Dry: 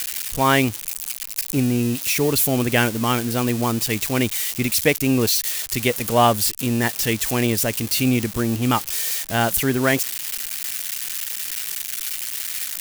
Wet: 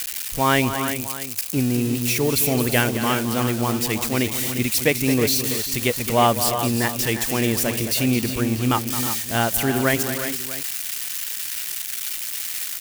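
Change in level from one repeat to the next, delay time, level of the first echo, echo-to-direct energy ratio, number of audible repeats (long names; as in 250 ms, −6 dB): repeats not evenly spaced, 217 ms, −11.0 dB, −6.0 dB, 4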